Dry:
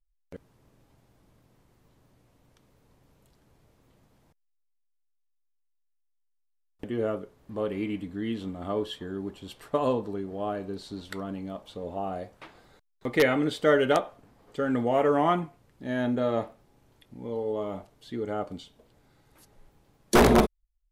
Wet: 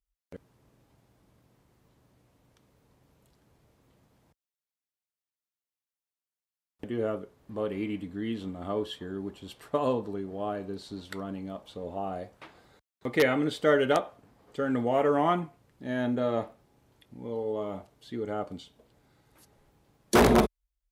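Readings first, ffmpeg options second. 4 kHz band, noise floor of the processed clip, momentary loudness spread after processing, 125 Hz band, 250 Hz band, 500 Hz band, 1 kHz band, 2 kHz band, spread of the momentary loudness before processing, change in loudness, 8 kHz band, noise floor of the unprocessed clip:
−1.5 dB, below −85 dBFS, 16 LU, −1.5 dB, −1.5 dB, −1.5 dB, −1.5 dB, −1.5 dB, 16 LU, −1.5 dB, −1.5 dB, −73 dBFS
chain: -af "highpass=43,volume=-1.5dB"

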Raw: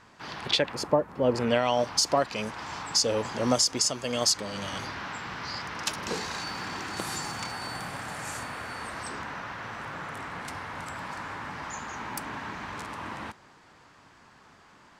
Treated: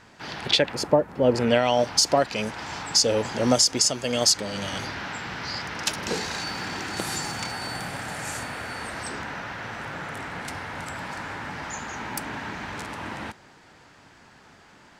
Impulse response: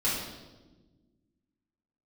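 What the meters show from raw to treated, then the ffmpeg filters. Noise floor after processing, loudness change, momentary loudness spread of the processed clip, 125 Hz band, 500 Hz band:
−53 dBFS, +4.0 dB, 14 LU, +4.5 dB, +4.5 dB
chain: -af "equalizer=frequency=1100:width=4.1:gain=-7,volume=4.5dB"

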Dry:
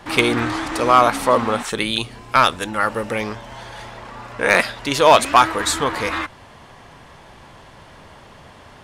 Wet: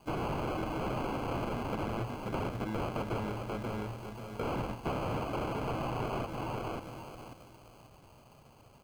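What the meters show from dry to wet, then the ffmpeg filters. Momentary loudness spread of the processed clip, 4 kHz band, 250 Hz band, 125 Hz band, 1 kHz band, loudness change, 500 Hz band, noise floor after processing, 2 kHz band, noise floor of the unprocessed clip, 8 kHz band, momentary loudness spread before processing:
10 LU, −24.0 dB, −11.5 dB, −5.0 dB, −19.5 dB, −18.5 dB, −16.5 dB, −58 dBFS, −23.0 dB, −45 dBFS, −26.5 dB, 21 LU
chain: -filter_complex "[0:a]aeval=exprs='(mod(8.91*val(0)+1,2)-1)/8.91':channel_layout=same,agate=range=-15dB:threshold=-31dB:ratio=16:detection=peak,asplit=2[link_01][link_02];[link_02]adelay=535,lowpass=frequency=2100:poles=1,volume=-6.5dB,asplit=2[link_03][link_04];[link_04]adelay=535,lowpass=frequency=2100:poles=1,volume=0.29,asplit=2[link_05][link_06];[link_06]adelay=535,lowpass=frequency=2100:poles=1,volume=0.29,asplit=2[link_07][link_08];[link_08]adelay=535,lowpass=frequency=2100:poles=1,volume=0.29[link_09];[link_03][link_05][link_07][link_09]amix=inputs=4:normalize=0[link_10];[link_01][link_10]amix=inputs=2:normalize=0,acompressor=threshold=-32dB:ratio=6,asplit=2[link_11][link_12];[link_12]aecho=0:1:282:0.188[link_13];[link_11][link_13]amix=inputs=2:normalize=0,acrusher=samples=24:mix=1:aa=0.000001,acrossover=split=2900[link_14][link_15];[link_15]acompressor=threshold=-53dB:ratio=4:attack=1:release=60[link_16];[link_14][link_16]amix=inputs=2:normalize=0,equalizer=frequency=120:width_type=o:width=0.44:gain=6,volume=-1dB"

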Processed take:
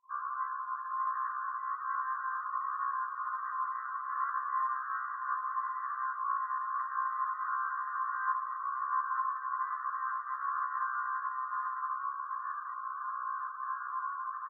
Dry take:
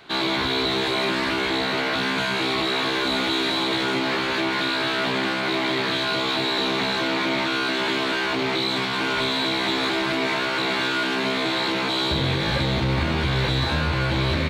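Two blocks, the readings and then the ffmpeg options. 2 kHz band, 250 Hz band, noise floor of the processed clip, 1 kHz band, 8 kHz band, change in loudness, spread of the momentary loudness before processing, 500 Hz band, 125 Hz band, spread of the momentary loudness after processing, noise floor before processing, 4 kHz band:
−17.0 dB, below −40 dB, −41 dBFS, −4.0 dB, below −40 dB, −13.0 dB, 1 LU, below −40 dB, below −40 dB, 4 LU, −25 dBFS, below −40 dB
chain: -filter_complex "[0:a]dynaudnorm=framelen=360:gausssize=17:maxgain=3.5dB,asuperpass=centerf=520:order=8:qfactor=0.7,acontrast=33,asplit=2[link_01][link_02];[link_02]aecho=0:1:35|72:0.422|0.562[link_03];[link_01][link_03]amix=inputs=2:normalize=0,afftfilt=real='re*gte(hypot(re,im),0.00891)':imag='im*gte(hypot(re,im),0.00891)':win_size=1024:overlap=0.75,alimiter=limit=-13.5dB:level=0:latency=1:release=47,afftfilt=real='re*eq(mod(floor(b*sr/1024/1000),2),1)':imag='im*eq(mod(floor(b*sr/1024/1000),2),1)':win_size=1024:overlap=0.75"

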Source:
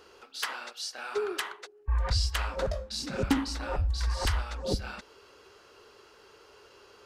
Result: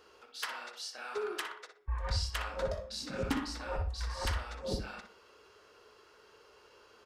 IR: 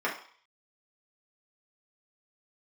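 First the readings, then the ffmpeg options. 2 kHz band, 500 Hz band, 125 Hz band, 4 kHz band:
−4.0 dB, −4.0 dB, −7.0 dB, −5.5 dB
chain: -filter_complex "[0:a]asplit=2[link_01][link_02];[link_02]adelay=61,lowpass=frequency=4200:poles=1,volume=-7.5dB,asplit=2[link_03][link_04];[link_04]adelay=61,lowpass=frequency=4200:poles=1,volume=0.24,asplit=2[link_05][link_06];[link_06]adelay=61,lowpass=frequency=4200:poles=1,volume=0.24[link_07];[link_01][link_03][link_05][link_07]amix=inputs=4:normalize=0,asplit=2[link_08][link_09];[1:a]atrim=start_sample=2205[link_10];[link_09][link_10]afir=irnorm=-1:irlink=0,volume=-17dB[link_11];[link_08][link_11]amix=inputs=2:normalize=0,volume=-6.5dB"

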